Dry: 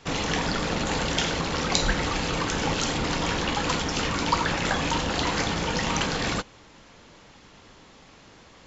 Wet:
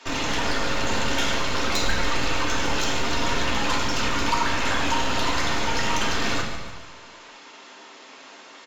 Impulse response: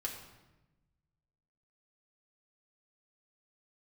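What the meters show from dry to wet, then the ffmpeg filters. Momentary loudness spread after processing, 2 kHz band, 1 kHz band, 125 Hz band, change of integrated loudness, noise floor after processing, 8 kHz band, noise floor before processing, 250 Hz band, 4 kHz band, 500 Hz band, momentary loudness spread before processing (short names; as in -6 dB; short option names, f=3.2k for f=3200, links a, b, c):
20 LU, +3.0 dB, +2.0 dB, -2.5 dB, +1.5 dB, -46 dBFS, n/a, -52 dBFS, -1.0 dB, +2.0 dB, 0.0 dB, 2 LU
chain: -filter_complex "[0:a]equalizer=f=450:t=o:w=1.1:g=-4,asplit=2[a][b];[b]acompressor=threshold=-39dB:ratio=6,volume=1dB[c];[a][c]amix=inputs=2:normalize=0,asoftclip=type=tanh:threshold=-16.5dB,acrossover=split=280|880[d][e][f];[d]acrusher=bits=4:dc=4:mix=0:aa=0.000001[g];[g][e][f]amix=inputs=3:normalize=0,aecho=1:1:146|292|438|584|730:0.266|0.136|0.0692|0.0353|0.018[h];[1:a]atrim=start_sample=2205,afade=t=out:st=0.4:d=0.01,atrim=end_sample=18081,asetrate=36162,aresample=44100[i];[h][i]afir=irnorm=-1:irlink=0"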